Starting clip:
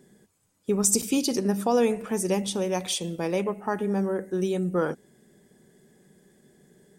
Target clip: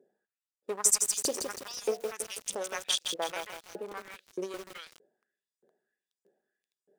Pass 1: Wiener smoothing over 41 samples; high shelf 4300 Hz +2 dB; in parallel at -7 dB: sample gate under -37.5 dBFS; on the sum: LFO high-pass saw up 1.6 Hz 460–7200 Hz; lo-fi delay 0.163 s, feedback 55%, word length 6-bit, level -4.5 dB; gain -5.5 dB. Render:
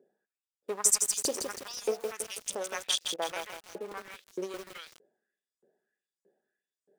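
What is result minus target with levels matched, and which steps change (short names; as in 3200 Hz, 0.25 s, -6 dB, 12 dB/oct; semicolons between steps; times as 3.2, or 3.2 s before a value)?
sample gate: distortion +12 dB
change: sample gate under -49 dBFS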